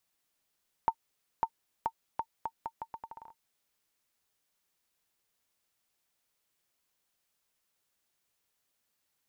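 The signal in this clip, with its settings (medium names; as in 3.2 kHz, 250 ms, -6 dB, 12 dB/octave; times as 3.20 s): bouncing ball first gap 0.55 s, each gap 0.78, 907 Hz, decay 65 ms -15 dBFS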